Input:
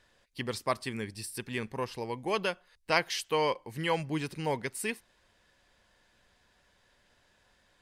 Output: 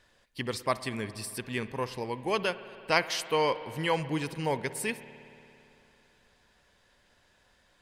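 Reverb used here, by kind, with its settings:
spring reverb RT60 2.9 s, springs 56 ms, chirp 20 ms, DRR 13.5 dB
level +1.5 dB

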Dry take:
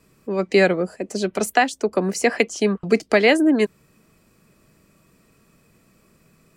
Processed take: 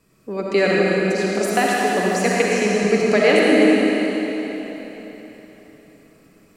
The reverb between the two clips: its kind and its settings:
comb and all-pass reverb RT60 3.9 s, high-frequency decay 0.95×, pre-delay 25 ms, DRR −5 dB
level −3.5 dB

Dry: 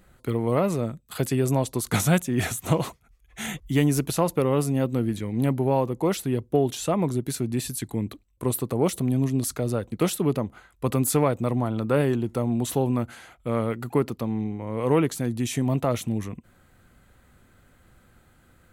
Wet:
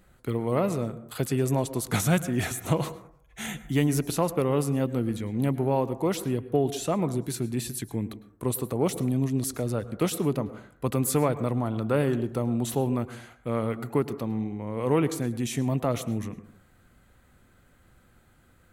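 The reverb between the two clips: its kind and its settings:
dense smooth reverb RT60 0.59 s, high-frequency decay 0.3×, pre-delay 95 ms, DRR 14.5 dB
level −2.5 dB

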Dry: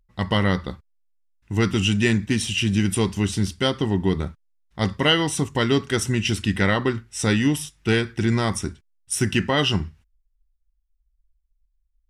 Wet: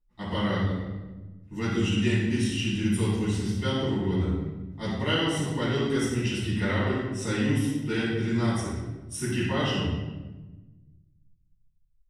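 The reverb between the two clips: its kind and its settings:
rectangular room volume 730 cubic metres, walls mixed, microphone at 9.7 metres
level −22.5 dB

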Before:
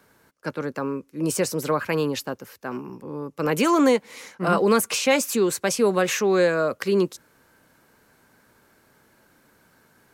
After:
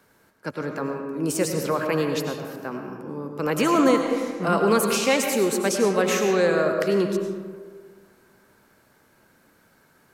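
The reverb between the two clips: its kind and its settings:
comb and all-pass reverb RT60 1.7 s, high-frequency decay 0.45×, pre-delay 60 ms, DRR 3.5 dB
level −1.5 dB

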